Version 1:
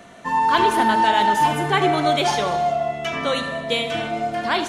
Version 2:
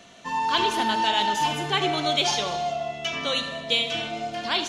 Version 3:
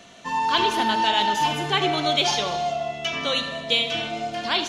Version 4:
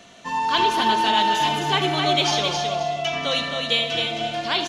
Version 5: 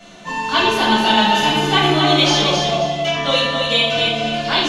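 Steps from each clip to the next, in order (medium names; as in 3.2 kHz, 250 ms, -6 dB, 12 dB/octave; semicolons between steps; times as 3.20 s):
high-order bell 4.2 kHz +9.5 dB; trim -7 dB
dynamic bell 8.3 kHz, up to -4 dB, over -43 dBFS, Q 1.5; trim +2 dB
feedback delay 265 ms, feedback 26%, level -5 dB
simulated room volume 660 m³, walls furnished, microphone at 7.2 m; trim -2.5 dB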